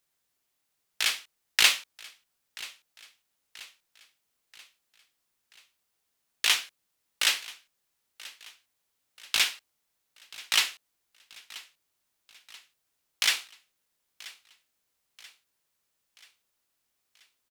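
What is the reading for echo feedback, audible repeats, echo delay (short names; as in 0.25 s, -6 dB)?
51%, 3, 0.983 s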